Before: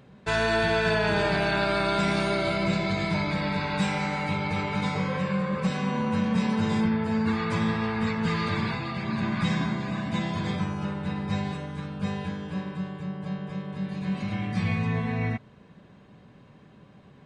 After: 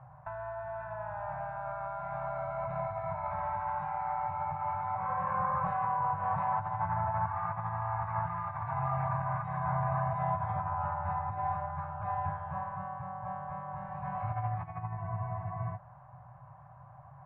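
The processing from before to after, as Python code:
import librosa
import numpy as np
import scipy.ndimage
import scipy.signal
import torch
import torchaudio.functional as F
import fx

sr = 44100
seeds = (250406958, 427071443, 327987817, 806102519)

y = scipy.signal.sosfilt(scipy.signal.ellip(3, 1.0, 40, [130.0, 710.0], 'bandstop', fs=sr, output='sos'), x)
y = fx.over_compress(y, sr, threshold_db=-36.0, ratio=-1.0)
y = scipy.signal.sosfilt(scipy.signal.butter(4, 1100.0, 'lowpass', fs=sr, output='sos'), y)
y = fx.low_shelf(y, sr, hz=96.0, db=-11.5)
y = fx.hum_notches(y, sr, base_hz=50, count=4)
y = fx.spec_freeze(y, sr, seeds[0], at_s=15.0, hold_s=0.76)
y = y * librosa.db_to_amplitude(6.5)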